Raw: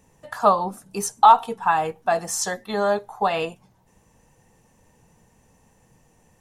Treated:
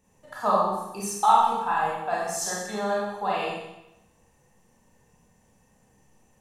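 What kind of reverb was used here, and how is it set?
Schroeder reverb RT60 0.9 s, combs from 30 ms, DRR -5.5 dB; gain -10 dB

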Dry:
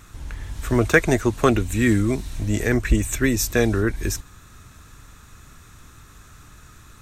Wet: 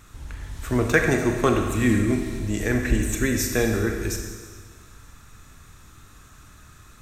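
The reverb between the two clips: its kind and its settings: Schroeder reverb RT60 1.6 s, combs from 28 ms, DRR 3 dB; gain -3.5 dB

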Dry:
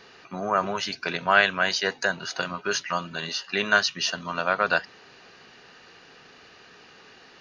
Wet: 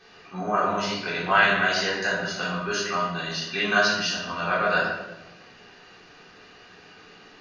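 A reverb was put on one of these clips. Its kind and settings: shoebox room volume 440 m³, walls mixed, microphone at 3.7 m; gain -8.5 dB

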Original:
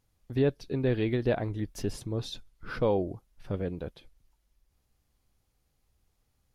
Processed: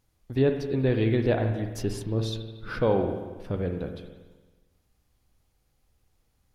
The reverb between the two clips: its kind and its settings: spring tank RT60 1.3 s, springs 45/54 ms, chirp 50 ms, DRR 5.5 dB; gain +2.5 dB

